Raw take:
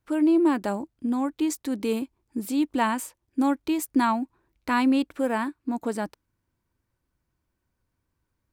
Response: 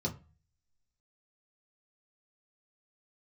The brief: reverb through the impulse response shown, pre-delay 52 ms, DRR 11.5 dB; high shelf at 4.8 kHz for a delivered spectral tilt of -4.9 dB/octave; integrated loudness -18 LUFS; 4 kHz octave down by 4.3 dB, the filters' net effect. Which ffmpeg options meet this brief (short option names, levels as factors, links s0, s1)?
-filter_complex "[0:a]equalizer=f=4000:t=o:g=-7.5,highshelf=f=4800:g=3.5,asplit=2[s0][s1];[1:a]atrim=start_sample=2205,adelay=52[s2];[s1][s2]afir=irnorm=-1:irlink=0,volume=0.188[s3];[s0][s3]amix=inputs=2:normalize=0,volume=2.11"